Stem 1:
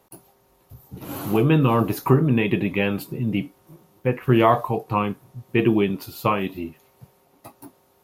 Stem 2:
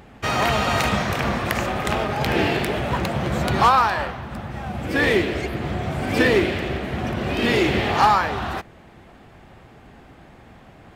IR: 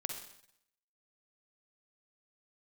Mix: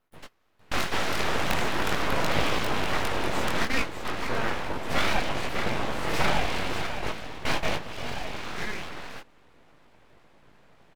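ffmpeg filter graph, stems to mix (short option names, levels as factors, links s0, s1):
-filter_complex "[0:a]bass=f=250:g=-1,treble=f=4000:g=-10,volume=0.376,asplit=3[s0][s1][s2];[s1]volume=0.596[s3];[1:a]acrossover=split=210|2000[s4][s5][s6];[s4]acompressor=threshold=0.0251:ratio=4[s7];[s5]acompressor=threshold=0.1:ratio=4[s8];[s6]acompressor=threshold=0.0282:ratio=4[s9];[s7][s8][s9]amix=inputs=3:normalize=0,volume=1.33,asplit=2[s10][s11];[s11]volume=0.376[s12];[s2]apad=whole_len=482949[s13];[s10][s13]sidechaingate=range=0.00398:threshold=0.00126:ratio=16:detection=peak[s14];[s3][s12]amix=inputs=2:normalize=0,aecho=0:1:594:1[s15];[s0][s14][s15]amix=inputs=3:normalize=0,flanger=delay=18.5:depth=5:speed=0.4,aeval=exprs='abs(val(0))':c=same"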